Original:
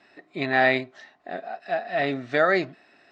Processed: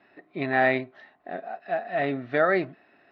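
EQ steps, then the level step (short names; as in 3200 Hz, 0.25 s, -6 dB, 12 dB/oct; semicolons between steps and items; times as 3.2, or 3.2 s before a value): air absorption 330 m; 0.0 dB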